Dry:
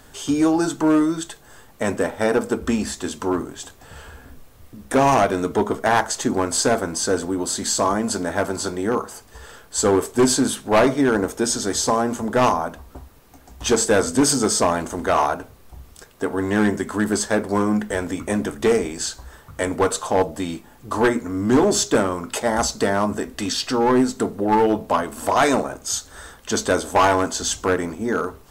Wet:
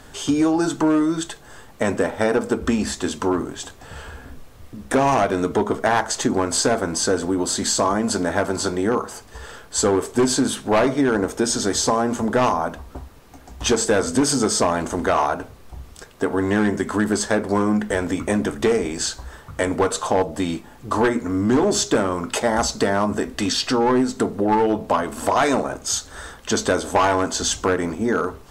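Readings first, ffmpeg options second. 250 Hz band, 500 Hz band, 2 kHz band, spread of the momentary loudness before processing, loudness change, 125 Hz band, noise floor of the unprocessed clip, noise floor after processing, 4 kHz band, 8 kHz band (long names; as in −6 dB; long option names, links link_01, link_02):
+0.5 dB, 0.0 dB, 0.0 dB, 9 LU, 0.0 dB, +0.5 dB, −48 dBFS, −45 dBFS, +1.0 dB, −0.5 dB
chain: -af "highshelf=frequency=12000:gain=-12,acompressor=threshold=-21dB:ratio=2.5,volume=4dB"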